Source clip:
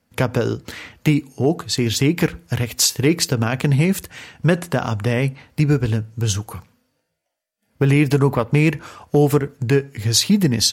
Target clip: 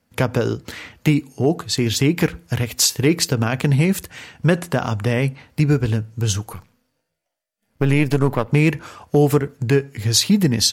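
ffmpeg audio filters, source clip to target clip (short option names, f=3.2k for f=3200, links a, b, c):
-filter_complex "[0:a]asettb=1/sr,asplit=3[a][b][c];[a]atrim=end=6.534[d];[b]atrim=start=6.53:end=8.48,asetpts=PTS-STARTPTS,afade=t=in:d=0.004:c=qsin,afade=t=out:st=1.946:d=0.004:c=qsin,aeval=exprs='if(lt(val(0),0),0.447*val(0),val(0))':c=same[e];[c]atrim=start=8.476[f];[d][e]acrossfade=d=0.004:c1=hsin:c2=qsin[g];[g][f]acrossfade=d=0.004:c1=qsin:c2=hsin"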